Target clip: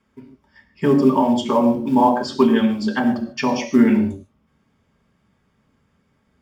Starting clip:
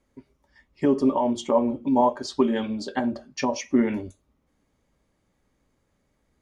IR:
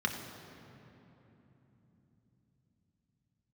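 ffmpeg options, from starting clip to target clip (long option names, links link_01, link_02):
-filter_complex "[0:a]acrusher=bits=8:mode=log:mix=0:aa=0.000001[link_01];[1:a]atrim=start_sample=2205,atrim=end_sample=6174,asetrate=39690,aresample=44100[link_02];[link_01][link_02]afir=irnorm=-1:irlink=0"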